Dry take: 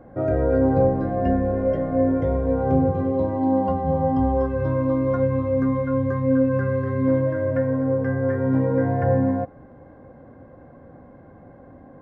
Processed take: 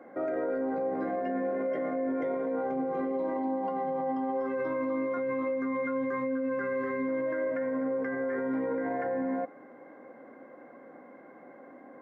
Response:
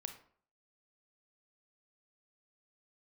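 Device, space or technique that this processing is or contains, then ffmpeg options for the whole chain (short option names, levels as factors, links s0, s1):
laptop speaker: -af "highpass=f=250:w=0.5412,highpass=f=250:w=1.3066,equalizer=f=1300:t=o:w=0.43:g=5,equalizer=f=2100:t=o:w=0.3:g=11.5,alimiter=limit=0.0794:level=0:latency=1:release=12,volume=0.75"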